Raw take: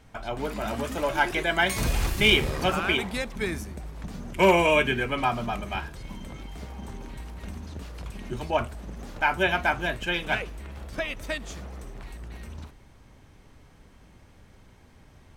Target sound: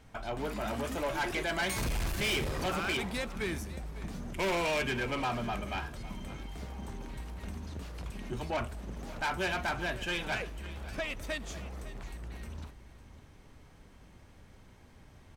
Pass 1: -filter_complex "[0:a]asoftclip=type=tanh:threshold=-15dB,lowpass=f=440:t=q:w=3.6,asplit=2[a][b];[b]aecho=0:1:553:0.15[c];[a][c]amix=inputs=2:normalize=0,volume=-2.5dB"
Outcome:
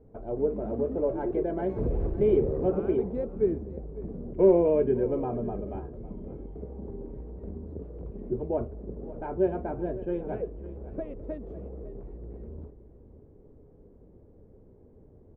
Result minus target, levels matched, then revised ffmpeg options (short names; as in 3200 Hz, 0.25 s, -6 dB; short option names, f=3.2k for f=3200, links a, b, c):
soft clip: distortion -9 dB; 500 Hz band +5.0 dB
-filter_complex "[0:a]asoftclip=type=tanh:threshold=-25.5dB,asplit=2[a][b];[b]aecho=0:1:553:0.15[c];[a][c]amix=inputs=2:normalize=0,volume=-2.5dB"